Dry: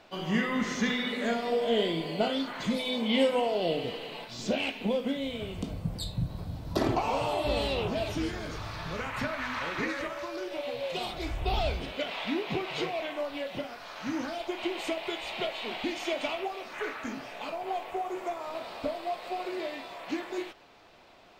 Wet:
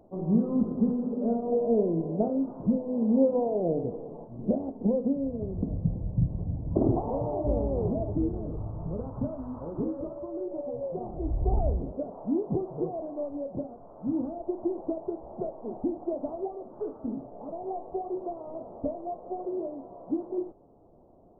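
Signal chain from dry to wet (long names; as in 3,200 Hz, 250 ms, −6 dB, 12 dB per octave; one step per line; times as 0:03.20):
Gaussian smoothing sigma 14 samples
level +6 dB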